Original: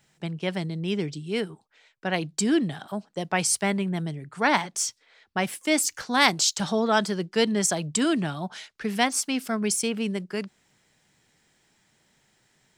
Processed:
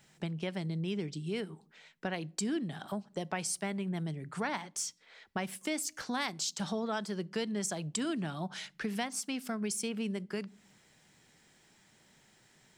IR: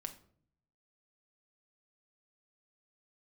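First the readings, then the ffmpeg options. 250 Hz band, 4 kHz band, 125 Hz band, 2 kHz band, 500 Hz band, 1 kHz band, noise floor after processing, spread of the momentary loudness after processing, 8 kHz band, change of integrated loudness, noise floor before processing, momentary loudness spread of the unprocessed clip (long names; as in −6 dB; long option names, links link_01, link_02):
−9.0 dB, −12.0 dB, −6.5 dB, −12.5 dB, −10.5 dB, −12.5 dB, −66 dBFS, 6 LU, −10.5 dB, −10.5 dB, −67 dBFS, 11 LU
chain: -filter_complex "[0:a]acompressor=threshold=-38dB:ratio=3,asplit=2[link_01][link_02];[link_02]highpass=120[link_03];[1:a]atrim=start_sample=2205,lowshelf=frequency=280:gain=10.5[link_04];[link_03][link_04]afir=irnorm=-1:irlink=0,volume=-13dB[link_05];[link_01][link_05]amix=inputs=2:normalize=0"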